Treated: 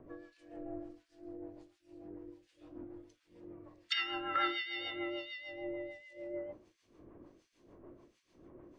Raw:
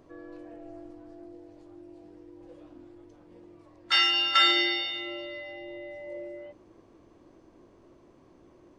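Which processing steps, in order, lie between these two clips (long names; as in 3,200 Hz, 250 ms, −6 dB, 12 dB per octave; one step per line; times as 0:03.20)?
treble cut that deepens with the level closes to 1,400 Hz, closed at −22.5 dBFS
rotating-speaker cabinet horn 6.7 Hz
hum removal 54.86 Hz, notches 31
two-band tremolo in antiphase 1.4 Hz, depth 100%, crossover 2,000 Hz
level +4 dB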